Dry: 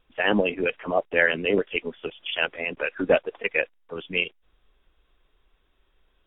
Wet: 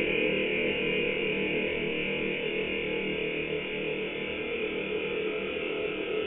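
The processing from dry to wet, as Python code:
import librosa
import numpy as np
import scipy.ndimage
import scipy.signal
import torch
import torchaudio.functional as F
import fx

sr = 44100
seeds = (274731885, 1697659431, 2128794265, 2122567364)

y = fx.room_flutter(x, sr, wall_m=4.4, rt60_s=1.3)
y = fx.paulstretch(y, sr, seeds[0], factor=30.0, window_s=0.25, from_s=1.86)
y = F.gain(torch.from_numpy(y), -4.0).numpy()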